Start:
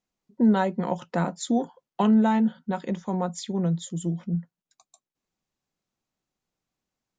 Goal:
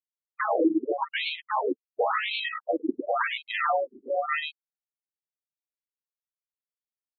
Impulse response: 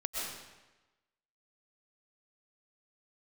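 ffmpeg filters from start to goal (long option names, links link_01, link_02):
-filter_complex "[0:a]afftfilt=real='real(if(lt(b,960),b+48*(1-2*mod(floor(b/48),2)),b),0)':imag='imag(if(lt(b,960),b+48*(1-2*mod(floor(b/48),2)),b),0)':win_size=2048:overlap=0.75,afftfilt=real='re*gte(hypot(re,im),0.224)':imag='im*gte(hypot(re,im),0.224)':win_size=1024:overlap=0.75,highpass=frequency=46:width=0.5412,highpass=frequency=46:width=1.3066,aresample=16000,acrusher=samples=25:mix=1:aa=0.000001,aresample=44100,acontrast=49,acrusher=bits=8:mode=log:mix=0:aa=0.000001,aecho=1:1:104:0.398,asplit=2[link_01][link_02];[link_02]highpass=frequency=720:poles=1,volume=21dB,asoftclip=type=tanh:threshold=-5.5dB[link_03];[link_01][link_03]amix=inputs=2:normalize=0,lowpass=frequency=4400:poles=1,volume=-6dB,alimiter=level_in=10.5dB:limit=-1dB:release=50:level=0:latency=1,afftfilt=real='re*between(b*sr/1024,290*pow(3100/290,0.5+0.5*sin(2*PI*0.93*pts/sr))/1.41,290*pow(3100/290,0.5+0.5*sin(2*PI*0.93*pts/sr))*1.41)':imag='im*between(b*sr/1024,290*pow(3100/290,0.5+0.5*sin(2*PI*0.93*pts/sr))/1.41,290*pow(3100/290,0.5+0.5*sin(2*PI*0.93*pts/sr))*1.41)':win_size=1024:overlap=0.75,volume=-6dB"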